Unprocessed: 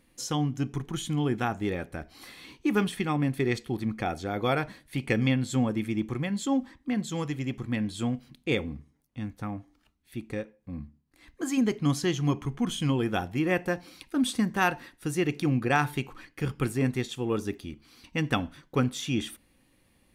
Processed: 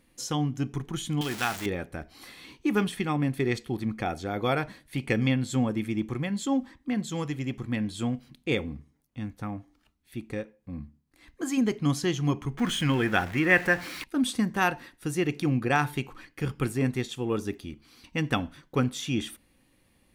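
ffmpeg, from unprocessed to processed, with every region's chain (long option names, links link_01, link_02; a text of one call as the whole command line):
ffmpeg -i in.wav -filter_complex "[0:a]asettb=1/sr,asplit=3[link_01][link_02][link_03];[link_01]atrim=end=1.214[link_04];[link_02]atrim=start=1.21:end=1.66,asetpts=PTS-STARTPTS,afade=type=in:duration=0.004:curve=qsin,afade=type=out:start_time=0.446:duration=0.004:curve=qsin,aeval=exprs='val(0)+0.5*0.0224*sgn(val(0))':channel_layout=same,tiltshelf=frequency=1100:gain=-9[link_05];[link_03]atrim=start=1.656[link_06];[link_04][link_05]acrossfade=duration=0.004:curve1=hsin:curve2=qsin[link_07];[link_07][link_06]acrossfade=duration=0.004:curve1=qsin:curve2=hsin,asettb=1/sr,asplit=3[link_08][link_09][link_10];[link_08]atrim=end=12.584[link_11];[link_09]atrim=start=12.58:end=14.04,asetpts=PTS-STARTPTS,afade=type=in:duration=0.004:curve=qsin,afade=type=out:start_time=1.456:duration=0.004:curve=qsin,aeval=exprs='val(0)+0.5*0.0112*sgn(val(0))':channel_layout=same,equalizer=frequency=1800:width=1.4:gain=11.5[link_12];[link_10]atrim=start=14.036[link_13];[link_11][link_12]acrossfade=duration=0.004:curve1=hsin:curve2=qsin[link_14];[link_14][link_13]acrossfade=duration=0.004:curve1=qsin:curve2=hsin" out.wav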